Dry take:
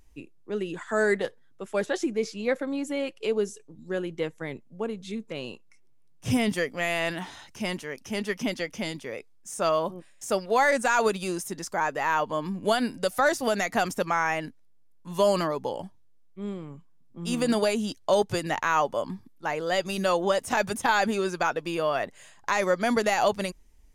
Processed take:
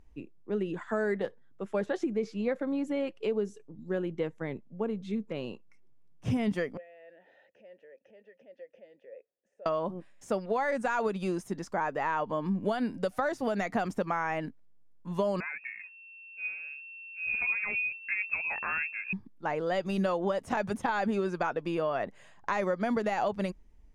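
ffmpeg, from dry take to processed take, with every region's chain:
-filter_complex "[0:a]asettb=1/sr,asplit=3[a][b][c];[a]atrim=end=6.774[d];[b]atrim=start=6.77:end=9.66,asetpts=PTS-STARTPTS,afade=t=in:d=0.004:c=qsin,afade=t=out:st=2.886:d=0.004:c=qsin,acompressor=threshold=-44dB:ratio=6:attack=3.2:release=140:knee=1:detection=peak,asplit=3[e][f][g];[e]bandpass=f=530:t=q:w=8,volume=0dB[h];[f]bandpass=f=1.84k:t=q:w=8,volume=-6dB[i];[g]bandpass=f=2.48k:t=q:w=8,volume=-9dB[j];[h][i][j]amix=inputs=3:normalize=0,equalizer=f=710:w=0.72:g=8[k];[c]atrim=start=9.656[l];[d][k]acrossfade=d=0.004:c1=hsin:c2=qsin[m];[m][l]acrossfade=d=0.004:c1=qsin:c2=hsin,asettb=1/sr,asplit=3[n][o][p];[n]atrim=end=15.404[q];[o]atrim=start=15.4:end=19.13,asetpts=PTS-STARTPTS,afade=t=in:d=0.004:c=qsin,afade=t=out:st=3.726:d=0.004:c=qsin,asubboost=boost=10:cutoff=220,flanger=delay=0.9:depth=5.6:regen=59:speed=1.6:shape=sinusoidal,lowpass=f=2.3k:t=q:w=0.5098,lowpass=f=2.3k:t=q:w=0.6013,lowpass=f=2.3k:t=q:w=0.9,lowpass=f=2.3k:t=q:w=2.563,afreqshift=-2700[r];[p]atrim=start=19.126[s];[q][r]acrossfade=d=0.004:c1=hsin:c2=qsin[t];[t][s]acrossfade=d=0.004:c1=qsin:c2=hsin,lowpass=f=1.4k:p=1,acompressor=threshold=-26dB:ratio=6,equalizer=f=200:w=4.9:g=3.5"

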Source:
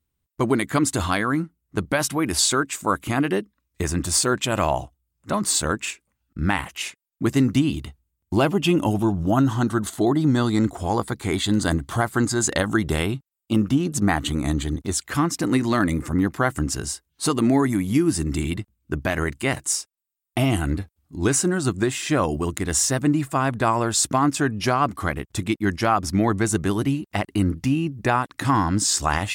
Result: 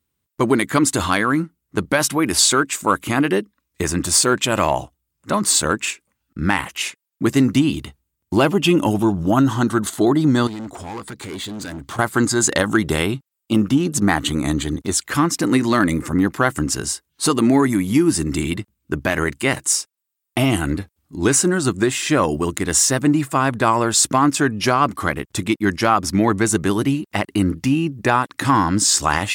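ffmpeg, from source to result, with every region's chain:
-filter_complex "[0:a]asettb=1/sr,asplit=3[a][b][c];[a]atrim=end=10.474[d];[b]atrim=start=10.47:end=11.99,asetpts=PTS-STARTPTS,afade=t=in:d=0.004:c=qsin,afade=t=out:st=1.516:d=0.004:c=qsin,acompressor=threshold=-32dB:ratio=2:attack=3.2:release=140:knee=1:detection=peak,equalizer=f=12k:t=o:w=0.3:g=-12,asoftclip=type=hard:threshold=-31dB[e];[c]atrim=start=11.986[f];[d][e]acrossfade=d=0.004:c1=hsin:c2=qsin[g];[g][f]acrossfade=d=0.004:c1=qsin:c2=hsin,highpass=f=160:p=1,equalizer=f=710:w=5.7:g=-4,acontrast=39"

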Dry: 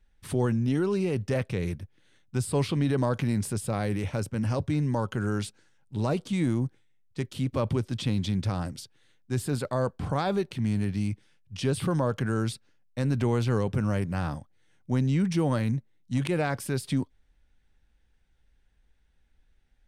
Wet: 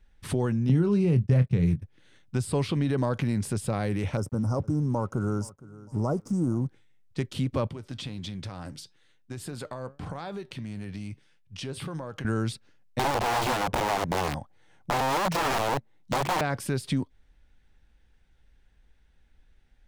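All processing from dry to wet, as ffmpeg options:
-filter_complex "[0:a]asettb=1/sr,asplit=3[a][b][c];[a]atrim=end=0.694[d];[b]atrim=start=0.69:end=1.82,asetpts=PTS-STARTPTS,afade=t=in:d=0.004:c=qsin,afade=t=out:st=1.126:d=0.004:c=qsin,agate=range=-24dB:threshold=-37dB:ratio=16:release=100:detection=peak,equalizer=f=140:w=1:g=14.5,asplit=2[e][f];[f]adelay=24,volume=-10dB[g];[e][g]amix=inputs=2:normalize=0,atrim=end_sample=49833[h];[c]atrim=start=1.816[i];[d][h]acrossfade=d=0.004:c1=hsin:c2=qsin[j];[j][i]acrossfade=d=0.004:c1=qsin:c2=hsin,asettb=1/sr,asplit=3[k][l][m];[k]atrim=end=4.174[n];[l]atrim=start=4.17:end=6.66,asetpts=PTS-STARTPTS,afade=t=in:d=0.004:c=qsin,afade=t=out:st=2.486:d=0.004:c=qsin,asuperstop=centerf=2700:order=20:qfactor=0.76,aeval=exprs='sgn(val(0))*max(abs(val(0))-0.00141,0)':c=same,aecho=1:1:463|926:0.0668|0.0174,atrim=end_sample=109809[o];[m]atrim=start=6.656[p];[n][o]acrossfade=d=0.004:c1=hsin:c2=qsin[q];[q][p]acrossfade=d=0.004:c1=qsin:c2=hsin,asettb=1/sr,asplit=3[r][s][t];[r]atrim=end=7.674[u];[s]atrim=start=7.67:end=12.25,asetpts=PTS-STARTPTS,afade=t=in:d=0.004:c=qsin,afade=t=out:st=4.576:d=0.004:c=qsin,lowshelf=f=370:g=-4.5,acompressor=threshold=-32dB:ratio=10:attack=3.2:release=140:knee=1:detection=peak,flanger=delay=5.5:depth=2.3:regen=84:speed=1.6:shape=triangular[v];[t]atrim=start=12.246[w];[u][v]acrossfade=d=0.004:c1=hsin:c2=qsin[x];[x][w]acrossfade=d=0.004:c1=qsin:c2=hsin,asettb=1/sr,asplit=3[y][z][aa];[y]atrim=end=12.994[ab];[z]atrim=start=12.99:end=16.41,asetpts=PTS-STARTPTS,afade=t=in:d=0.004:c=qsin,afade=t=out:st=3.416:d=0.004:c=qsin,aeval=exprs='(mod(17.8*val(0)+1,2)-1)/17.8':c=same,equalizer=f=810:w=1.2:g=9[ac];[aa]atrim=start=16.406[ad];[ab][ac]acrossfade=d=0.004:c1=hsin:c2=qsin[ae];[ae][ad]acrossfade=d=0.004:c1=qsin:c2=hsin,highshelf=f=8.7k:g=-7,acompressor=threshold=-32dB:ratio=2,volume=5dB"

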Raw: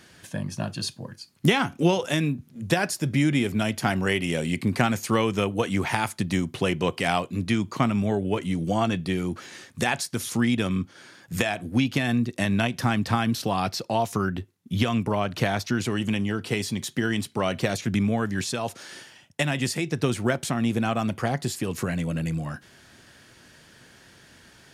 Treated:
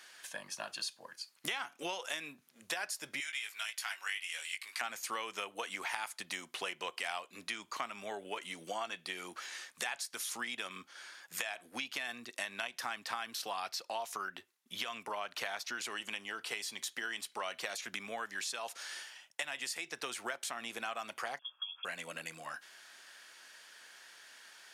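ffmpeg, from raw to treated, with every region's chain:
-filter_complex "[0:a]asettb=1/sr,asplit=3[a][b][c];[a]atrim=end=3.204[d];[b]atrim=start=3.2:end=4.81,asetpts=PTS-STARTPTS,afade=t=in:d=0.004:c=qsin,afade=t=out:st=1.606:d=0.004:c=qsin,highpass=1.5k,asplit=2[e][f];[f]adelay=18,volume=-6dB[g];[e][g]amix=inputs=2:normalize=0,atrim=end_sample=71001[h];[c]atrim=start=4.806[i];[d][h]acrossfade=d=0.004:c1=hsin:c2=qsin[j];[j][i]acrossfade=d=0.004:c1=qsin:c2=hsin,asettb=1/sr,asplit=3[k][l][m];[k]atrim=end=21.394[n];[l]atrim=start=21.39:end=21.85,asetpts=PTS-STARTPTS,afade=t=in:d=0.004:c=qsin,afade=t=out:st=0.456:d=0.004:c=qsin,asplit=3[o][p][q];[o]bandpass=f=300:t=q:w=8,volume=0dB[r];[p]bandpass=f=870:t=q:w=8,volume=-6dB[s];[q]bandpass=f=2.24k:t=q:w=8,volume=-9dB[t];[r][s][t]amix=inputs=3:normalize=0,lowpass=f=3.1k:t=q:w=0.5098,lowpass=f=3.1k:t=q:w=0.6013,lowpass=f=3.1k:t=q:w=0.9,lowpass=f=3.1k:t=q:w=2.563,afreqshift=-3600[u];[m]atrim=start=21.846[v];[n][u]acrossfade=d=0.004:c1=hsin:c2=qsin[w];[w][v]acrossfade=d=0.004:c1=qsin:c2=hsin,highpass=900,acompressor=threshold=-36dB:ratio=3,volume=-1.5dB"

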